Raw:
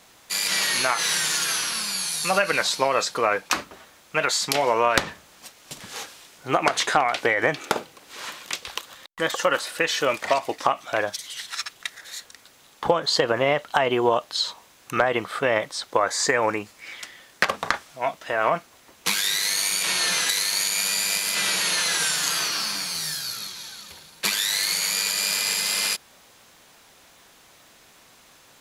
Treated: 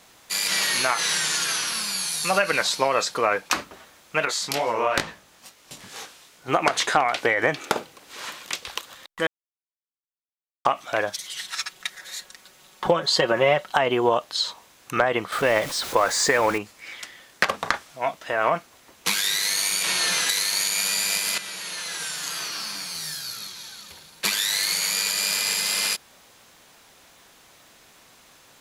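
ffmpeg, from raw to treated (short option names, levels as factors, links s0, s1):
-filter_complex "[0:a]asettb=1/sr,asplit=3[s0][s1][s2];[s0]atrim=end=1.004[s3];[s1]atrim=start=1:end=1.67,asetpts=PTS-STARTPTS,afade=t=in:d=0.004:c=qsin,afade=t=out:st=0.666:d=0.004:c=qsin,lowpass=11000[s4];[s2]atrim=start=1.666[s5];[s3][s4]acrossfade=d=0.004:c1=hsin:c2=qsin[s6];[s6][s5]acrossfade=d=0.004:c1=qsin:c2=hsin,asettb=1/sr,asplit=3[s7][s8][s9];[s7]atrim=end=4.254[s10];[s8]atrim=start=4.25:end=6.48,asetpts=PTS-STARTPTS,afade=t=in:d=0.004:c=qsin,afade=t=out:st=2.226:d=0.004:c=qsin,flanger=delay=17.5:depth=6.4:speed=2.3[s11];[s9]atrim=start=6.476[s12];[s10][s11]acrossfade=d=0.004:c1=hsin:c2=qsin[s13];[s13][s12]acrossfade=d=0.004:c1=qsin:c2=hsin,asettb=1/sr,asplit=3[s14][s15][s16];[s14]atrim=end=11.184[s17];[s15]atrim=start=11.18:end=13.72,asetpts=PTS-STARTPTS,afade=t=in:d=0.004:c=qsin,afade=t=out:st=2.536:d=0.004:c=qsin,aecho=1:1:5.4:0.57,atrim=end_sample=112014[s18];[s16]atrim=start=13.716[s19];[s17][s18]acrossfade=d=0.004:c1=hsin:c2=qsin[s20];[s20][s19]acrossfade=d=0.004:c1=qsin:c2=hsin,asettb=1/sr,asplit=3[s21][s22][s23];[s21]atrim=end=15.324[s24];[s22]atrim=start=15.32:end=16.58,asetpts=PTS-STARTPTS,afade=t=in:d=0.004:c=qsin,afade=t=out:st=1.256:d=0.004:c=qsin,aeval=exprs='val(0)+0.5*0.0376*sgn(val(0))':c=same[s25];[s23]atrim=start=16.576[s26];[s24][s25]acrossfade=d=0.004:c1=hsin:c2=qsin[s27];[s27][s26]acrossfade=d=0.004:c1=qsin:c2=hsin,asplit=4[s28][s29][s30][s31];[s28]atrim=end=9.27,asetpts=PTS-STARTPTS,afade=t=out:st=9.266:d=0.004:c=hsin[s32];[s29]atrim=start=9.27:end=10.65,asetpts=PTS-STARTPTS,volume=0[s33];[s30]atrim=start=10.65:end=21.38,asetpts=PTS-STARTPTS,afade=t=in:d=0.004:c=hsin,afade=t=out:st=10.726:d=0.004:c=hsin:silence=0.237137[s34];[s31]atrim=start=21.38,asetpts=PTS-STARTPTS,afade=t=in:d=2.89:silence=0.237137[s35];[s32][s33][s34][s35]concat=n=4:v=0:a=1"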